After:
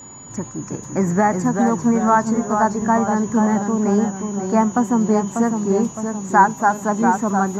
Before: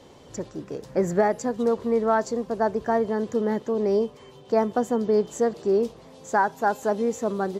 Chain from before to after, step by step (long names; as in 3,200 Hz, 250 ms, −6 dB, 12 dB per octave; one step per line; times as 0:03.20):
steady tone 6,900 Hz −38 dBFS
octave-band graphic EQ 125/250/500/1,000/2,000/4,000 Hz +9/+8/−9/+11/+4/−5 dB
delay with pitch and tempo change per echo 311 ms, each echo −1 semitone, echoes 3, each echo −6 dB
level +1 dB